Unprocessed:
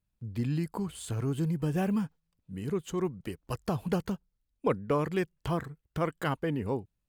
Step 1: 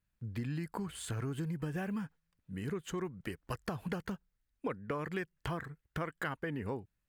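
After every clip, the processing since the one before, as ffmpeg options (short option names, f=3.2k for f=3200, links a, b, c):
-af "equalizer=f=1.7k:t=o:w=0.94:g=9,acompressor=threshold=-32dB:ratio=6,volume=-2dB"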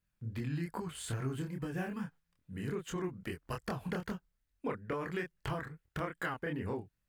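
-af "flanger=delay=22.5:depth=6.3:speed=2.4,volume=3.5dB"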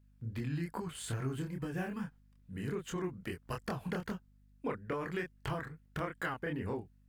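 -af "aeval=exprs='val(0)+0.000708*(sin(2*PI*50*n/s)+sin(2*PI*2*50*n/s)/2+sin(2*PI*3*50*n/s)/3+sin(2*PI*4*50*n/s)/4+sin(2*PI*5*50*n/s)/5)':c=same"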